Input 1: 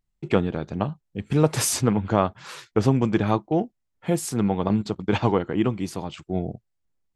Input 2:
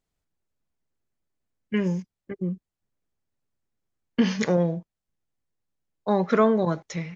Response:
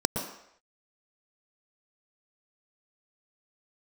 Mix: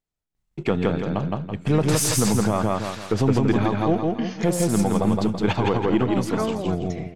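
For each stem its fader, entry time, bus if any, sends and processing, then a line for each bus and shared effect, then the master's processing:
+3.0 dB, 0.35 s, no send, echo send −3 dB, gain on one half-wave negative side −3 dB
−6.5 dB, 0.00 s, no send, no echo send, no processing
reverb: not used
echo: repeating echo 165 ms, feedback 38%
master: brickwall limiter −10.5 dBFS, peak gain reduction 7.5 dB

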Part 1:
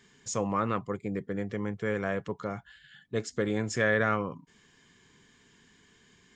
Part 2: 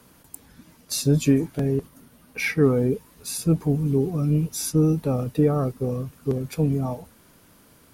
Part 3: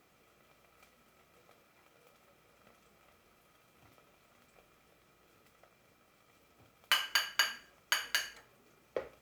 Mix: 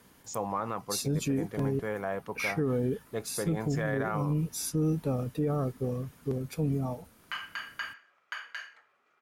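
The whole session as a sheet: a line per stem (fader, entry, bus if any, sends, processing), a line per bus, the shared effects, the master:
−7.0 dB, 0.00 s, no send, parametric band 810 Hz +12.5 dB 1 octave
−6.0 dB, 0.00 s, no send, no processing
+0.5 dB, 0.40 s, no send, brickwall limiter −20.5 dBFS, peak gain reduction 7.5 dB; resonant band-pass 1,400 Hz, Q 1.3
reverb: not used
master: brickwall limiter −20.5 dBFS, peak gain reduction 8.5 dB

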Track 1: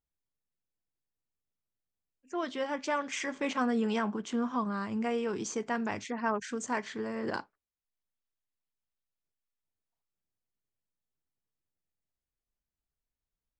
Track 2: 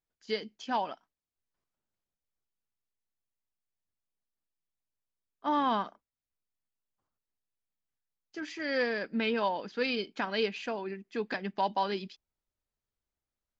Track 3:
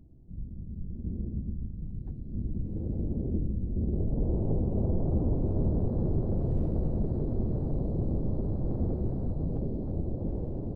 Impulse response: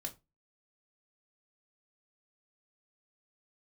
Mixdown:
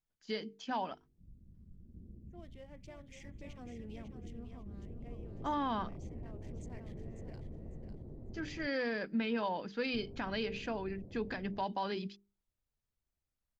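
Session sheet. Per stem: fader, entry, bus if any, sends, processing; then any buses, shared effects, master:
−19.5 dB, 0.00 s, no send, echo send −8 dB, adaptive Wiener filter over 9 samples; flat-topped bell 1,200 Hz −11.5 dB 1.1 octaves; automatic ducking −7 dB, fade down 1.05 s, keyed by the second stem
−3.5 dB, 0.00 s, no send, no echo send, bass and treble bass +8 dB, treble −1 dB; mains-hum notches 50/100/150/200/250/300/350/400/450 Hz
−18.5 dB, 0.90 s, muted 0:08.67–0:09.94, no send, no echo send, no processing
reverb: not used
echo: repeating echo 549 ms, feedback 26%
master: brickwall limiter −26.5 dBFS, peak gain reduction 5.5 dB

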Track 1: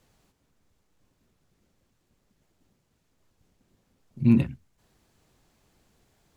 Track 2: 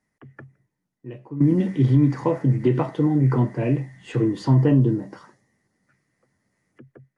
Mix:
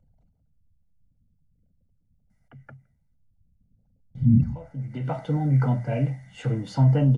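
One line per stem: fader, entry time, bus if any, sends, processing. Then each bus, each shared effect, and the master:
+0.5 dB, 0.00 s, no send, echo send −17 dB, spectral envelope exaggerated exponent 3
−4.0 dB, 2.30 s, muted 0:03.15–0:04.15, no send, no echo send, automatic ducking −18 dB, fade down 1.55 s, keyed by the first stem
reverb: not used
echo: single-tap delay 142 ms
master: mains-hum notches 60/120 Hz; comb filter 1.4 ms, depth 85%

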